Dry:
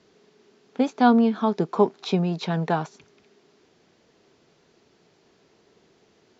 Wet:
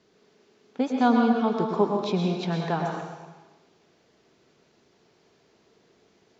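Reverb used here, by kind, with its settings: plate-style reverb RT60 1.2 s, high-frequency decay 0.9×, pre-delay 95 ms, DRR 1 dB; gain -4 dB

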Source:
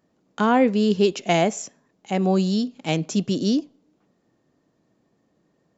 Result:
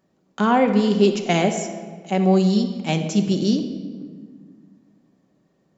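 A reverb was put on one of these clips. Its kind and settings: shoebox room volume 2100 m³, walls mixed, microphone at 1.1 m

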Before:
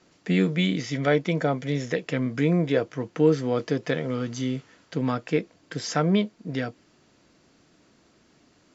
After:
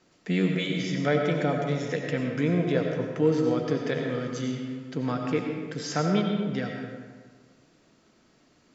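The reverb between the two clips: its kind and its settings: digital reverb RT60 1.6 s, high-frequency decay 0.6×, pre-delay 50 ms, DRR 2 dB; gain -3.5 dB

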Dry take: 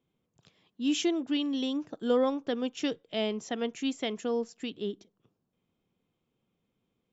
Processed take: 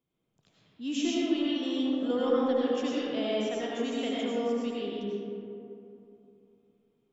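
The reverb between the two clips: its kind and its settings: digital reverb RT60 2.9 s, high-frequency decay 0.4×, pre-delay 55 ms, DRR -7 dB; gain -6.5 dB

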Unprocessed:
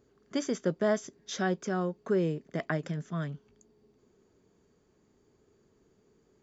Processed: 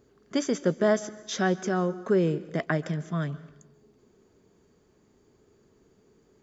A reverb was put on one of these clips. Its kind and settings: plate-style reverb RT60 0.93 s, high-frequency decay 0.9×, pre-delay 0.12 s, DRR 17 dB; gain +4.5 dB

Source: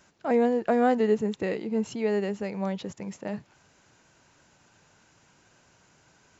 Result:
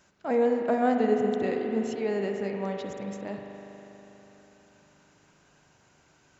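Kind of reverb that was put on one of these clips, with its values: spring tank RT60 3.9 s, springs 40 ms, chirp 35 ms, DRR 2.5 dB; gain -3 dB

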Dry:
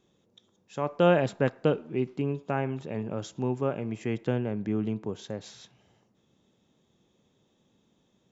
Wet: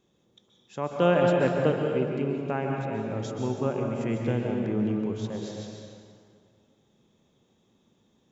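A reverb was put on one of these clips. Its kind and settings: plate-style reverb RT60 2.1 s, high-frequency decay 0.7×, pre-delay 0.115 s, DRR 0.5 dB; gain -1 dB

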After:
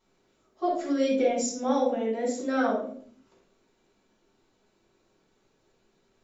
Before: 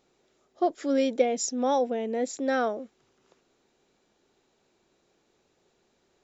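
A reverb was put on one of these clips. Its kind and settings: shoebox room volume 530 m³, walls furnished, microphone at 9.5 m; gain -11.5 dB

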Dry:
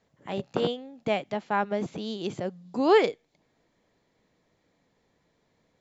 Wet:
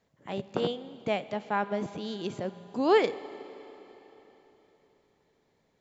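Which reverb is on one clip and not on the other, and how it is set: Schroeder reverb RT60 3.8 s, combs from 31 ms, DRR 15 dB; gain -2.5 dB

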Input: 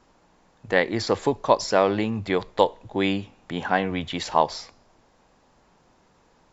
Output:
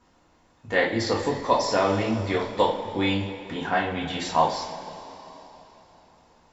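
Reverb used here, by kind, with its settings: two-slope reverb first 0.35 s, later 3.7 s, from -18 dB, DRR -4.5 dB; gain -6 dB

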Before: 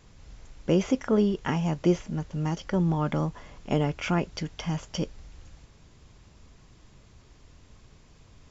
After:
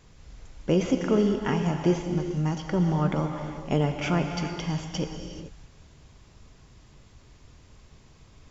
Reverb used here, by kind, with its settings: non-linear reverb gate 0.46 s flat, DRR 4.5 dB

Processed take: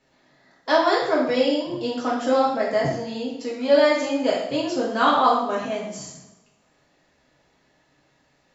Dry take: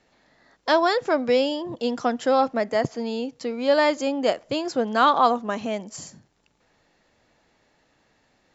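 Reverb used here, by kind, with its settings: two-slope reverb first 0.71 s, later 1.9 s, from -23 dB, DRR -5.5 dB; gain -5.5 dB

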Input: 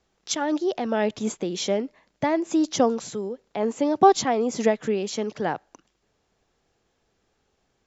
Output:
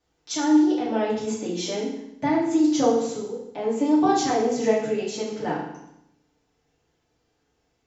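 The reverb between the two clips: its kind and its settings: FDN reverb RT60 0.79 s, low-frequency decay 1.3×, high-frequency decay 0.95×, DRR -7.5 dB; gain -9 dB

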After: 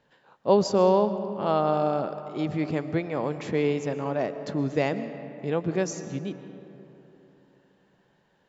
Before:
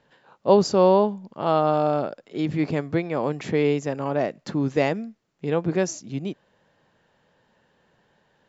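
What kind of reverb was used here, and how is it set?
digital reverb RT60 3.3 s, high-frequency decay 0.45×, pre-delay 85 ms, DRR 11 dB; gain -3.5 dB

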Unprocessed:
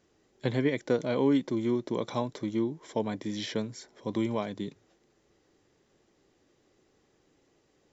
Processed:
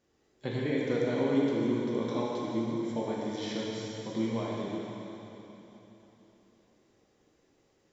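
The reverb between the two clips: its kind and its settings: plate-style reverb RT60 3.6 s, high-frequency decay 0.95×, DRR -5 dB; gain -7 dB

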